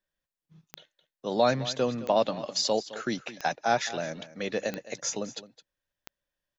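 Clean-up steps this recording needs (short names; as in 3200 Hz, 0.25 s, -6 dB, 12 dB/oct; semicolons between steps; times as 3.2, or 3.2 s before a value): de-click; inverse comb 0.214 s -16 dB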